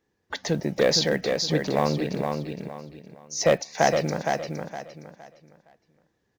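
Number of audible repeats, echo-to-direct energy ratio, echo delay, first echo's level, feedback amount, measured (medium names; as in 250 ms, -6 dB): 3, -4.5 dB, 464 ms, -5.0 dB, 29%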